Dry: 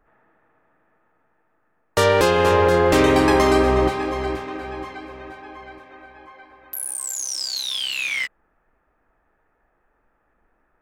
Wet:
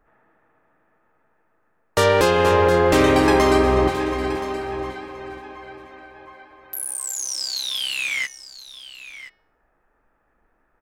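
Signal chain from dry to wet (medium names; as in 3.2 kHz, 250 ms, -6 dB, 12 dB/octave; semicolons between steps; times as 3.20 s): de-hum 365.3 Hz, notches 16; on a send: delay 1024 ms -14.5 dB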